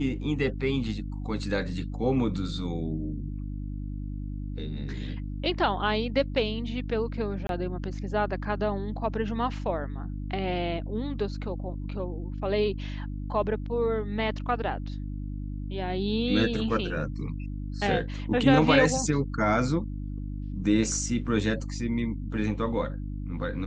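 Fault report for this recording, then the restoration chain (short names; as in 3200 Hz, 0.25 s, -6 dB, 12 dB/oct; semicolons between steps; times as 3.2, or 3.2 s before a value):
hum 50 Hz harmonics 6 -34 dBFS
7.47–7.49 gap 22 ms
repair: de-hum 50 Hz, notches 6; interpolate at 7.47, 22 ms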